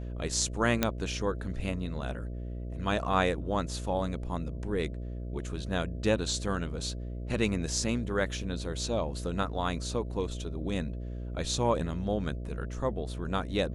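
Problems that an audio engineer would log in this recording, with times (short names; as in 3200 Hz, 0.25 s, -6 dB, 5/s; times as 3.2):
buzz 60 Hz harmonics 11 -37 dBFS
0.83 pop -9 dBFS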